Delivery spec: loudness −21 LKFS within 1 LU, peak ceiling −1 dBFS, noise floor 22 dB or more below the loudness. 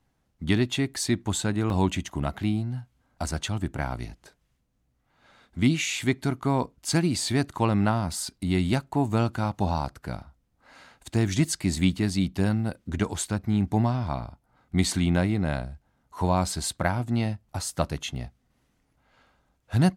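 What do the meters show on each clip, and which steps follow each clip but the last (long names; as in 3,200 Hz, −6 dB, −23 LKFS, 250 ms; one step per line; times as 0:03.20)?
number of dropouts 2; longest dropout 1.2 ms; integrated loudness −27.0 LKFS; sample peak −7.5 dBFS; target loudness −21.0 LKFS
→ repair the gap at 0:01.70/0:08.13, 1.2 ms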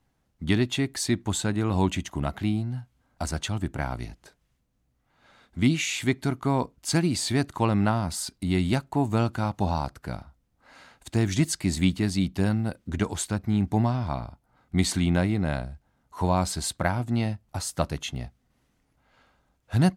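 number of dropouts 0; integrated loudness −27.0 LKFS; sample peak −7.5 dBFS; target loudness −21.0 LKFS
→ level +6 dB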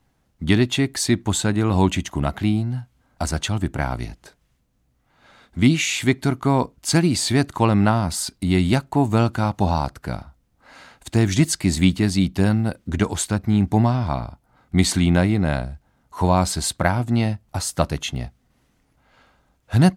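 integrated loudness −21.0 LKFS; sample peak −1.5 dBFS; background noise floor −65 dBFS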